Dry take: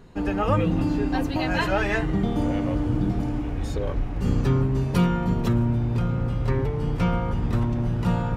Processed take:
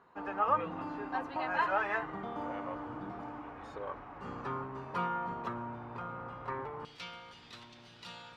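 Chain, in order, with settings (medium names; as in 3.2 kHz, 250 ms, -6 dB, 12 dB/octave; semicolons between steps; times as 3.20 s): band-pass filter 1.1 kHz, Q 2.2, from 6.85 s 4 kHz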